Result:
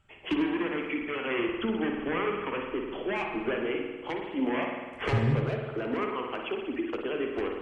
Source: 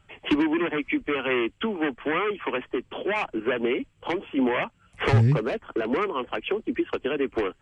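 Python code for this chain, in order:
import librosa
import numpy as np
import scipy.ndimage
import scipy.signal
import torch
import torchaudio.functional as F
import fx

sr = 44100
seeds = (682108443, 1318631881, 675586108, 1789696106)

y = fx.low_shelf(x, sr, hz=190.0, db=9.0, at=(1.39, 3.52))
y = fx.rev_spring(y, sr, rt60_s=1.4, pass_ms=(49,), chirp_ms=25, drr_db=1.5)
y = F.gain(torch.from_numpy(y), -7.0).numpy()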